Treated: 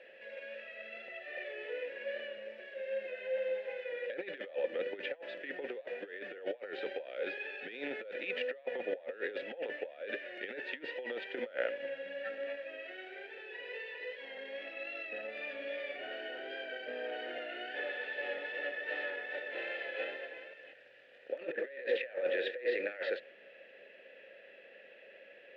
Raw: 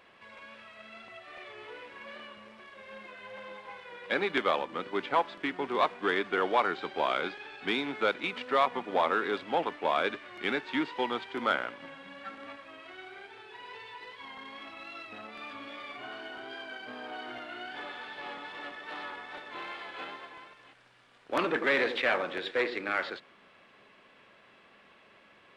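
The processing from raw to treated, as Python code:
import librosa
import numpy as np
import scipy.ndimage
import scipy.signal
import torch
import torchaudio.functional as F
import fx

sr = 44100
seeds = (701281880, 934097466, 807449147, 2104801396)

y = fx.over_compress(x, sr, threshold_db=-35.0, ratio=-0.5)
y = fx.vowel_filter(y, sr, vowel='e')
y = F.gain(torch.from_numpy(y), 9.0).numpy()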